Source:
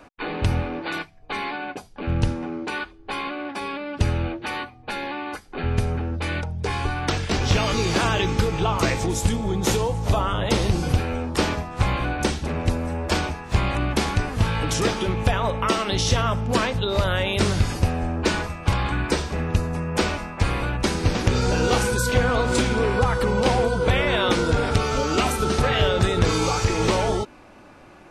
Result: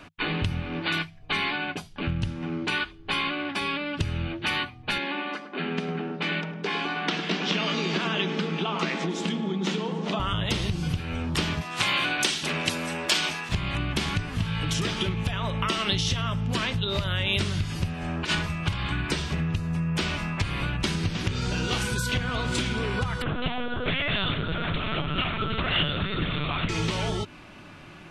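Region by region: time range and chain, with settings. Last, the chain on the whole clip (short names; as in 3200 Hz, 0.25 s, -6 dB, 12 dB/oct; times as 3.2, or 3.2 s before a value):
4.98–10.2 elliptic high-pass 180 Hz + air absorption 120 m + darkening echo 0.104 s, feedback 75%, low-pass 1200 Hz, level -7.5 dB
11.61–13.49 HPF 310 Hz + high shelf 2400 Hz +9 dB
17.93–18.35 low shelf 240 Hz -11 dB + negative-ratio compressor -26 dBFS, ratio -0.5
23.22–26.69 low shelf 280 Hz -5.5 dB + LPC vocoder at 8 kHz pitch kept
whole clip: thirty-one-band EQ 100 Hz +6 dB, 160 Hz +11 dB, 500 Hz -7 dB, 800 Hz -5 dB, 2500 Hz -3 dB; compressor, threshold -25 dBFS; bell 2900 Hz +10 dB 1.1 oct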